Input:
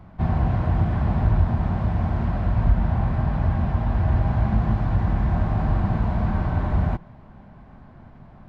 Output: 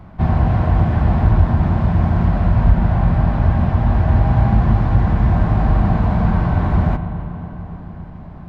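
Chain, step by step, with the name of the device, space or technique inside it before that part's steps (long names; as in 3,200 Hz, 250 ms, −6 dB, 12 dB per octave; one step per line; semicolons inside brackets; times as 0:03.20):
dub delay into a spring reverb (feedback echo with a low-pass in the loop 281 ms, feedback 77%, low-pass 2,000 Hz, level −14.5 dB; spring reverb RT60 3.5 s, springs 41 ms, chirp 20 ms, DRR 10.5 dB)
level +6 dB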